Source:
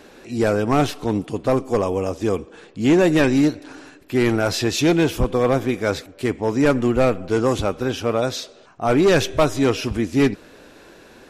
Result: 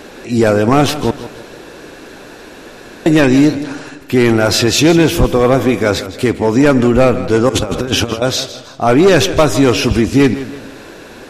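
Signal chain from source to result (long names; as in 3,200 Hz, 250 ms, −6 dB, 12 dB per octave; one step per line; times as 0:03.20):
0:01.11–0:03.06: fill with room tone
0:07.49–0:08.22: compressor whose output falls as the input rises −27 dBFS, ratio −0.5
boost into a limiter +13.5 dB
feedback echo with a swinging delay time 161 ms, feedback 42%, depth 59 cents, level −14 dB
level −2 dB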